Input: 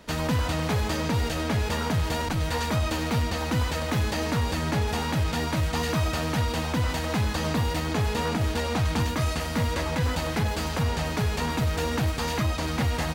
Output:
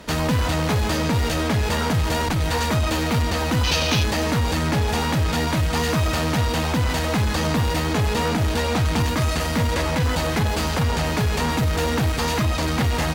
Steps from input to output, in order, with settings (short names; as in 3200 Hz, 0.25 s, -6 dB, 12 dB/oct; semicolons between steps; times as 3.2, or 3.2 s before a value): added harmonics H 5 -18 dB, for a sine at -18.5 dBFS; spectral gain 3.64–4.04, 2300–6600 Hz +9 dB; gain +4.5 dB